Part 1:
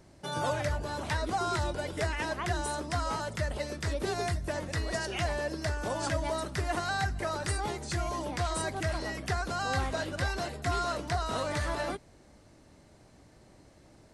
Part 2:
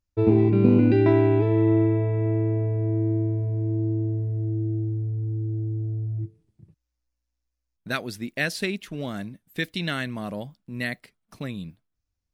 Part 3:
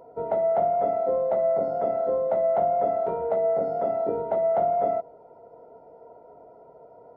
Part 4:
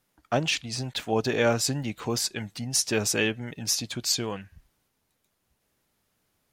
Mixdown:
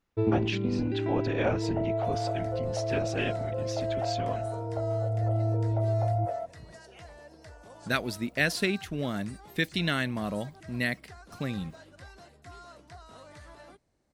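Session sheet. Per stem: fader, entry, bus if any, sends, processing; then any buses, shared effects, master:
-17.5 dB, 1.80 s, no send, dry
0.0 dB, 0.00 s, no send, auto duck -12 dB, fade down 0.50 s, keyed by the fourth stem
-9.0 dB, 1.45 s, no send, steep high-pass 450 Hz 72 dB/oct
-5.5 dB, 0.00 s, no send, LPF 3300 Hz 12 dB/oct; whisperiser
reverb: off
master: dry

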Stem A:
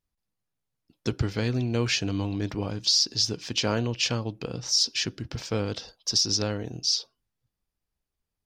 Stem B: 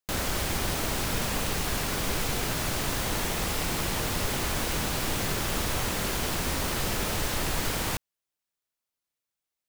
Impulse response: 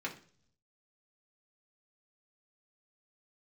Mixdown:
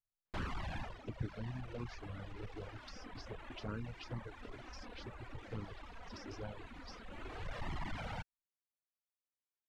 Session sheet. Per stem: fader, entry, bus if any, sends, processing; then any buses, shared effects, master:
-12.0 dB, 0.00 s, no send, envelope phaser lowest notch 390 Hz, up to 3800 Hz, full sweep at -20.5 dBFS
0.0 dB, 0.25 s, no send, hard clip -32.5 dBFS, distortion -7 dB; auto duck -8 dB, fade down 0.25 s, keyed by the first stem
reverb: off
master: LPF 2300 Hz 12 dB/oct; reverb removal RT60 1.4 s; envelope flanger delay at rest 9.3 ms, full sweep at -32 dBFS

